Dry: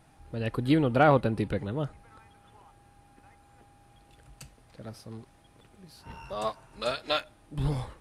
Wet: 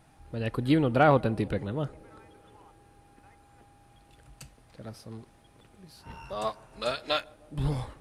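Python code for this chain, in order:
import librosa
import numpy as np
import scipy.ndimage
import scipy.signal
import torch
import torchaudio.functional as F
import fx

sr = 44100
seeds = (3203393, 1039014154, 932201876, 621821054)

y = fx.echo_banded(x, sr, ms=154, feedback_pct=81, hz=370.0, wet_db=-23)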